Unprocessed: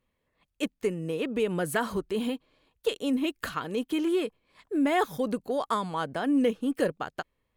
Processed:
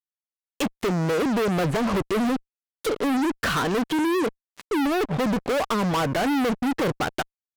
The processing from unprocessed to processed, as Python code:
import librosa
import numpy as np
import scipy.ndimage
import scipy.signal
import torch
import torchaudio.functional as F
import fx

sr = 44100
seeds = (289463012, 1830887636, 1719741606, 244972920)

y = fx.env_lowpass_down(x, sr, base_hz=470.0, full_db=-23.0)
y = fx.fuzz(y, sr, gain_db=44.0, gate_db=-50.0)
y = F.gain(torch.from_numpy(y), -8.0).numpy()